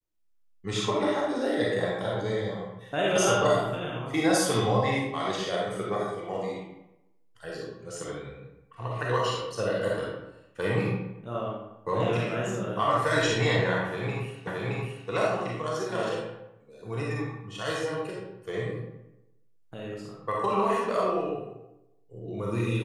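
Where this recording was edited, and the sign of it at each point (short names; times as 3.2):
14.47 repeat of the last 0.62 s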